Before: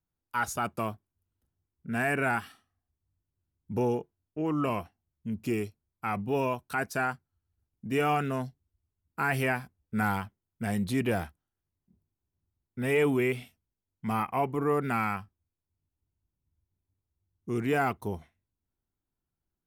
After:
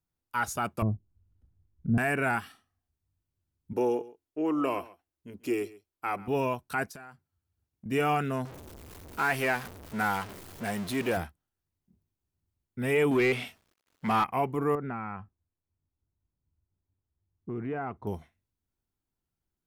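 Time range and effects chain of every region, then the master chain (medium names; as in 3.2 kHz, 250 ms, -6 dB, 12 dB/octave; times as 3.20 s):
0.82–1.98 s: RIAA curve playback + low-pass that closes with the level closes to 430 Hz, closed at -28 dBFS
3.73–6.28 s: resonant low shelf 210 Hz -10.5 dB, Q 1.5 + band-stop 220 Hz, Q 5.2 + delay 136 ms -19.5 dB
6.89–7.86 s: high-pass 62 Hz + compression 12:1, threshold -42 dBFS
8.45–11.17 s: jump at every zero crossing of -33 dBFS + tone controls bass -10 dB, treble -2 dB + tape noise reduction on one side only decoder only
13.11–14.24 s: companding laws mixed up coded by mu + overdrive pedal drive 16 dB, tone 2.6 kHz, clips at -16 dBFS
14.75–18.07 s: compression 2.5:1, threshold -32 dBFS + low-pass 1.5 kHz
whole clip: none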